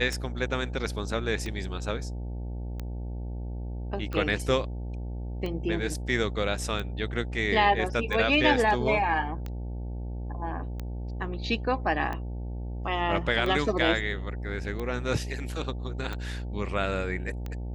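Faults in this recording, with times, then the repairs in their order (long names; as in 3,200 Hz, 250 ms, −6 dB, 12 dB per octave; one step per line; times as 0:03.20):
mains buzz 60 Hz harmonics 15 −34 dBFS
scratch tick 45 rpm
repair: click removal
hum removal 60 Hz, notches 15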